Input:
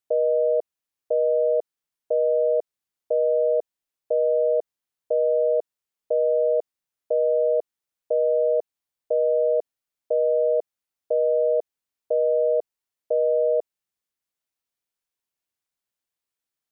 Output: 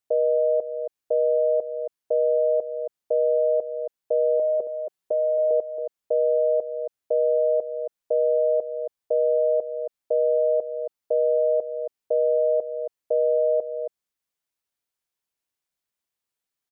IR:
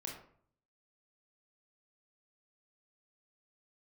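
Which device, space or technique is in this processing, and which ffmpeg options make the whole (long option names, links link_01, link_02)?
ducked delay: -filter_complex "[0:a]asettb=1/sr,asplit=3[link_01][link_02][link_03];[link_01]atrim=end=4.394[link_04];[link_02]atrim=start=4.39:end=5.51,asetpts=PTS-STARTPTS,afade=type=in:duration=0.004:curve=qsin,afade=type=out:start_time=1.116:duration=0.004:curve=qsin,aecho=1:1:5.3:0.72,atrim=end_sample=49392[link_05];[link_03]atrim=start=5.506[link_06];[link_04][link_05]acrossfade=duration=0.004:curve1=hsin:curve2=qsin[link_07];[link_07][link_06]acrossfade=duration=0.004:curve1=qsin:curve2=hsin,asplit=3[link_08][link_09][link_10];[link_09]adelay=274,volume=-7dB[link_11];[link_10]apad=whole_len=749016[link_12];[link_11][link_12]sidechaincompress=threshold=-24dB:ratio=8:attack=16:release=475[link_13];[link_08][link_13]amix=inputs=2:normalize=0"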